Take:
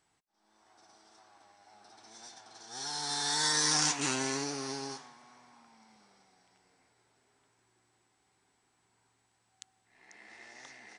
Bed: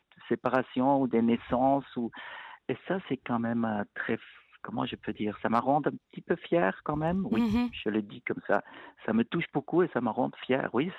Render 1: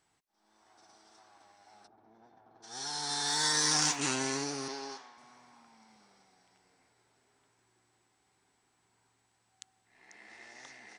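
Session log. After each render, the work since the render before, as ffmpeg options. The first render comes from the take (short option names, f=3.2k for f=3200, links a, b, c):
-filter_complex "[0:a]asplit=3[a][b][c];[a]afade=t=out:st=1.86:d=0.02[d];[b]adynamicsmooth=sensitivity=3:basefreq=770,afade=t=in:st=1.86:d=0.02,afade=t=out:st=2.62:d=0.02[e];[c]afade=t=in:st=2.62:d=0.02[f];[d][e][f]amix=inputs=3:normalize=0,asettb=1/sr,asplit=3[g][h][i];[g]atrim=end=3.274[j];[h]atrim=start=3.27:end=3.96,asetpts=PTS-STARTPTS,afade=t=in:d=0.004:c=qsin,afade=t=out:st=0.686:d=0.004:c=qsin,acrusher=bits=8:mix=0:aa=0.5[k];[i]atrim=start=3.956[l];[j][k]acrossfade=d=0.004:c1=hsin:c2=qsin[m];[m][l]acrossfade=d=0.004:c1=qsin:c2=hsin,asettb=1/sr,asplit=3[n][o][p];[n]atrim=end=4.684[q];[o]atrim=start=4.68:end=5.18,asetpts=PTS-STARTPTS,afade=t=in:d=0.004:c=qsin,afade=t=out:st=0.496:d=0.004:c=qsin,highpass=330,lowpass=5.4k[r];[p]atrim=start=5.176[s];[q][r]acrossfade=d=0.004:c1=hsin:c2=qsin[t];[t][s]acrossfade=d=0.004:c1=qsin:c2=hsin"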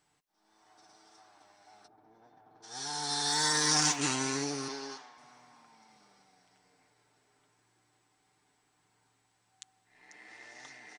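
-af "aecho=1:1:6.7:0.45"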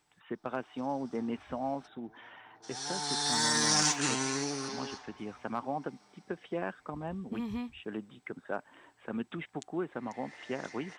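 -filter_complex "[1:a]volume=-9.5dB[a];[0:a][a]amix=inputs=2:normalize=0"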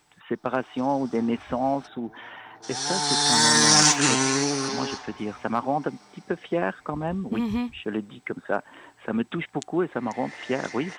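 -af "volume=10dB"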